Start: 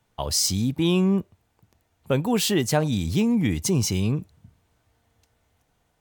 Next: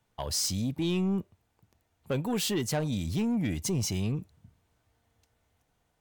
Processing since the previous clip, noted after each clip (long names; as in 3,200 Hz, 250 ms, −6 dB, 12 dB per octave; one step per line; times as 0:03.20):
soft clipping −17.5 dBFS, distortion −16 dB
level −5 dB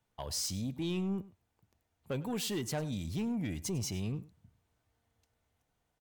single-tap delay 100 ms −19 dB
level −6 dB